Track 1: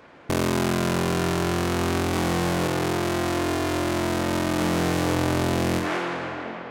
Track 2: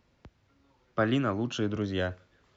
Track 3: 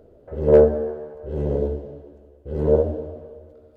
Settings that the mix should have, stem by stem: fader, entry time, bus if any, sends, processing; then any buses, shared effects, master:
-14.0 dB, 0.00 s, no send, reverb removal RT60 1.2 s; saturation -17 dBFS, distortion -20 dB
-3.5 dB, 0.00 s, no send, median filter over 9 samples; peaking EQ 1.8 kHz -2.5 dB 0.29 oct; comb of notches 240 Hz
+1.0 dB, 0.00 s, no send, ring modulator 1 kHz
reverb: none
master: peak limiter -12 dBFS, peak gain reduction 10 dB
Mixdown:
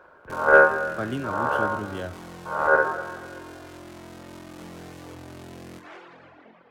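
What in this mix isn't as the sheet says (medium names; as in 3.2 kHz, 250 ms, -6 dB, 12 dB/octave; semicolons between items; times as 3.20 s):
stem 2: missing comb of notches 240 Hz; master: missing peak limiter -12 dBFS, peak gain reduction 10 dB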